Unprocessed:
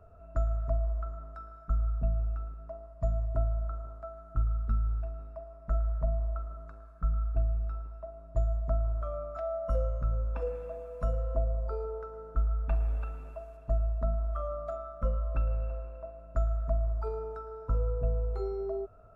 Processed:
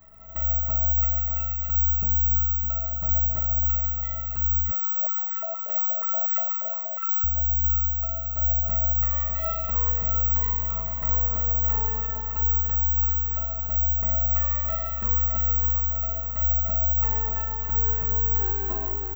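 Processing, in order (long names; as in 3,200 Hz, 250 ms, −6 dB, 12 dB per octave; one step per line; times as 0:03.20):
lower of the sound and its delayed copy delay 1 ms
brickwall limiter −26.5 dBFS, peak gain reduction 8 dB
repeating echo 614 ms, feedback 49%, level −7.5 dB
rectangular room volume 1,300 cubic metres, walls mixed, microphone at 1.5 metres
bad sample-rate conversion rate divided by 2×, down none, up zero stuff
0:04.71–0:07.24: high-pass on a step sequencer 8.4 Hz 520–1,500 Hz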